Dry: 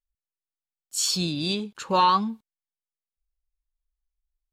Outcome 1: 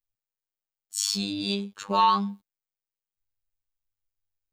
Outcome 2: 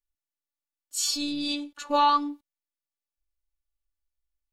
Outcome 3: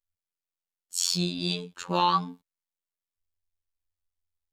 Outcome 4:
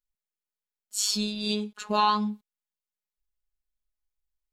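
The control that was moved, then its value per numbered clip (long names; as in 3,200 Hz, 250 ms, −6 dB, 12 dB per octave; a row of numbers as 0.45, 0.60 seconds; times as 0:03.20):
phases set to zero, frequency: 100, 290, 88, 210 Hertz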